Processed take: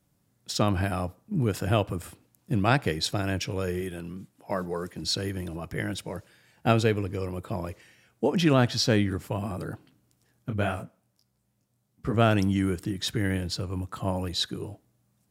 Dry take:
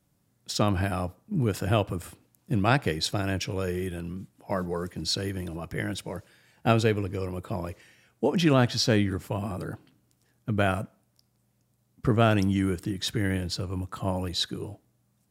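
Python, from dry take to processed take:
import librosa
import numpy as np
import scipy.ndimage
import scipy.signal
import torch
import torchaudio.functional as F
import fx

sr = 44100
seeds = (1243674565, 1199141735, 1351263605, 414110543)

y = fx.low_shelf(x, sr, hz=86.0, db=-12.0, at=(3.81, 5.04))
y = fx.detune_double(y, sr, cents=fx.line((10.49, 58.0), (12.13, 43.0)), at=(10.49, 12.13), fade=0.02)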